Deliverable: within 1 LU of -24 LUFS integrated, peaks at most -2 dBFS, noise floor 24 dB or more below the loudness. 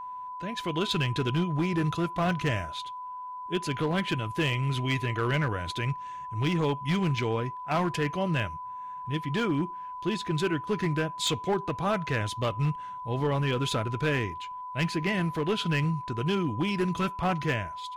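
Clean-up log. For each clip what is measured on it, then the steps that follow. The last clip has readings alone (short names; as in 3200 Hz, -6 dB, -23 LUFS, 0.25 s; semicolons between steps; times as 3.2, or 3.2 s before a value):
clipped 1.2%; flat tops at -20.5 dBFS; steady tone 1000 Hz; tone level -36 dBFS; loudness -29.5 LUFS; peak -20.5 dBFS; loudness target -24.0 LUFS
-> clip repair -20.5 dBFS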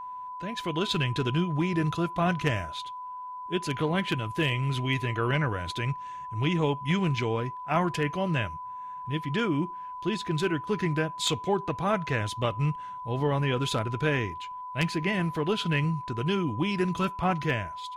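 clipped 0.0%; steady tone 1000 Hz; tone level -36 dBFS
-> notch 1000 Hz, Q 30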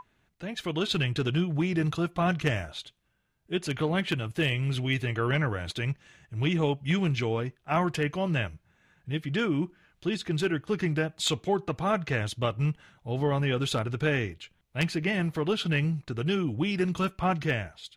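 steady tone none; loudness -29.0 LUFS; peak -11.0 dBFS; loudness target -24.0 LUFS
-> gain +5 dB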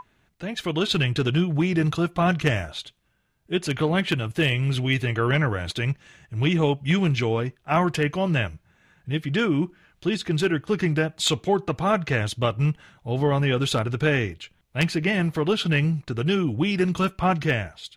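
loudness -24.0 LUFS; peak -6.0 dBFS; noise floor -66 dBFS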